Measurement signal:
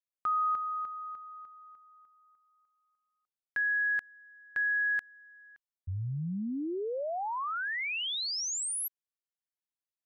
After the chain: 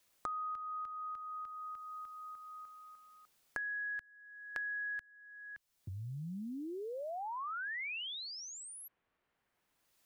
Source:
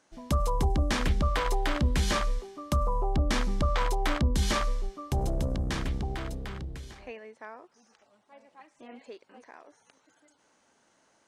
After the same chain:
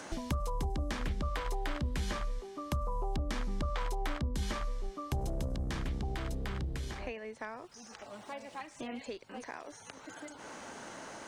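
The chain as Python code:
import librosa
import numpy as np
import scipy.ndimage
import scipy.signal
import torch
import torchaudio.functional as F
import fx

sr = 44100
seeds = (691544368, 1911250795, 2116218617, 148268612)

y = fx.band_squash(x, sr, depth_pct=100)
y = y * librosa.db_to_amplitude(-8.0)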